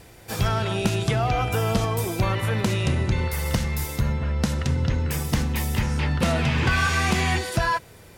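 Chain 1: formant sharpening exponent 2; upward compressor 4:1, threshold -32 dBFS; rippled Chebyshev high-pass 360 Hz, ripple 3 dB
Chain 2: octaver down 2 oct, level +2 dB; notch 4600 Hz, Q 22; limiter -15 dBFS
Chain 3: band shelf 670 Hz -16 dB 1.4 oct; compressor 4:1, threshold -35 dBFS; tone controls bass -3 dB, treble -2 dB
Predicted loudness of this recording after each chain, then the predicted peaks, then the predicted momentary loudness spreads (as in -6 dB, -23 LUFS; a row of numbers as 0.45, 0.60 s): -33.5, -25.5, -38.5 LUFS; -15.0, -15.0, -21.5 dBFS; 19, 2, 3 LU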